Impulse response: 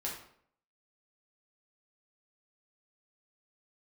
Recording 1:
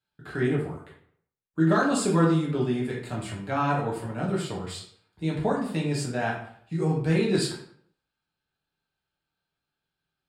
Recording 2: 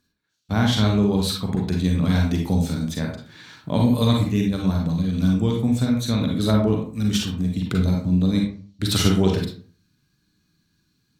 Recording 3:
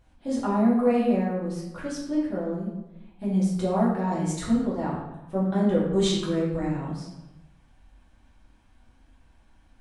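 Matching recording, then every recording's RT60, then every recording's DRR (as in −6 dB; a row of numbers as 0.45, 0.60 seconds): 1; 0.65, 0.45, 1.0 seconds; −4.5, −0.5, −7.5 decibels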